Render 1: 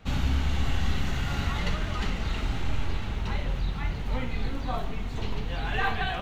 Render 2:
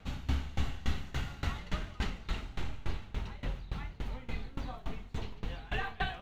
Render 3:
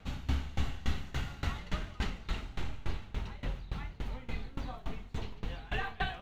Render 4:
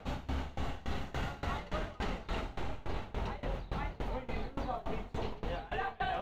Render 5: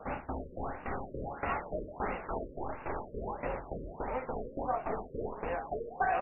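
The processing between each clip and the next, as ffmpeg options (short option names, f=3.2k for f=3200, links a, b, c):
-af "aeval=exprs='val(0)*pow(10,-22*if(lt(mod(3.5*n/s,1),2*abs(3.5)/1000),1-mod(3.5*n/s,1)/(2*abs(3.5)/1000),(mod(3.5*n/s,1)-2*abs(3.5)/1000)/(1-2*abs(3.5)/1000))/20)':c=same,volume=-1.5dB"
-af anull
-af "equalizer=f=610:t=o:w=2.2:g=11.5,areverse,acompressor=threshold=-37dB:ratio=6,areverse,volume=4dB"
-filter_complex "[0:a]bass=f=250:g=-12,treble=f=4k:g=-6,asplit=8[a][b][c][d][e][f][g][h];[b]adelay=227,afreqshift=110,volume=-16dB[i];[c]adelay=454,afreqshift=220,volume=-19.9dB[j];[d]adelay=681,afreqshift=330,volume=-23.8dB[k];[e]adelay=908,afreqshift=440,volume=-27.6dB[l];[f]adelay=1135,afreqshift=550,volume=-31.5dB[m];[g]adelay=1362,afreqshift=660,volume=-35.4dB[n];[h]adelay=1589,afreqshift=770,volume=-39.3dB[o];[a][i][j][k][l][m][n][o]amix=inputs=8:normalize=0,afftfilt=real='re*lt(b*sr/1024,580*pow(2900/580,0.5+0.5*sin(2*PI*1.5*pts/sr)))':imag='im*lt(b*sr/1024,580*pow(2900/580,0.5+0.5*sin(2*PI*1.5*pts/sr)))':win_size=1024:overlap=0.75,volume=6dB"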